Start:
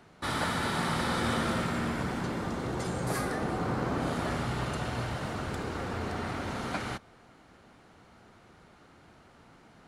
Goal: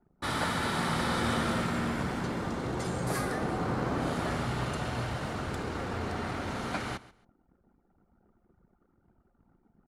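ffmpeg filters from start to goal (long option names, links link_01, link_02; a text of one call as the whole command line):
ffmpeg -i in.wav -af "anlmdn=0.00631,aecho=1:1:137|274:0.119|0.0273" out.wav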